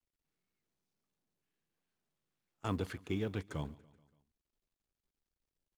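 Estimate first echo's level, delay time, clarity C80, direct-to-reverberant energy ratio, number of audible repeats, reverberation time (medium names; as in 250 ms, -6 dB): -22.5 dB, 143 ms, no reverb, no reverb, 3, no reverb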